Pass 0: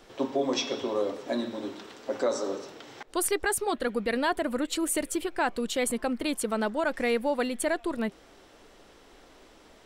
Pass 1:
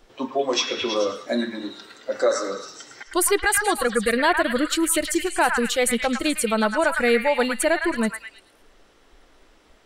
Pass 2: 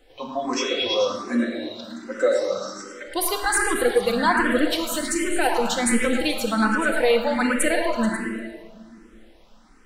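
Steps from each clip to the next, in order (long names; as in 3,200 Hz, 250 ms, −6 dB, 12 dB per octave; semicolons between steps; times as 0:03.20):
noise reduction from a noise print of the clip's start 11 dB; echo through a band-pass that steps 108 ms, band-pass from 1,500 Hz, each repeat 0.7 octaves, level −1 dB; level +7.5 dB
rectangular room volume 2,800 cubic metres, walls mixed, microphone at 2 metres; frequency shifter mixed with the dry sound +1.3 Hz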